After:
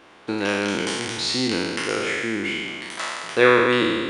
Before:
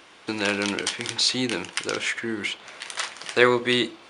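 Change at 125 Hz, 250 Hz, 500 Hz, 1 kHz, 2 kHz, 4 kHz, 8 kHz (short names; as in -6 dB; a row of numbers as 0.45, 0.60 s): +3.5, +4.0, +4.5, +4.5, +3.0, -0.5, -1.5 dB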